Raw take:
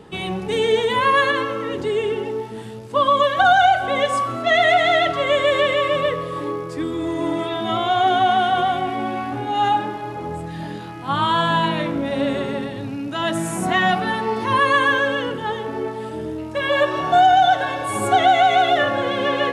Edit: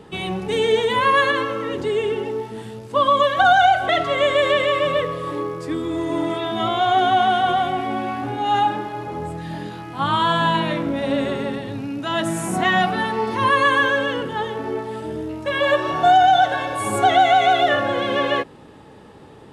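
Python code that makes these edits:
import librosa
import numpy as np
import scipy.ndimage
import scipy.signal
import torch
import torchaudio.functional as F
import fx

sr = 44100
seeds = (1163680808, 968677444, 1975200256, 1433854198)

y = fx.edit(x, sr, fx.cut(start_s=3.89, length_s=1.09), tone=tone)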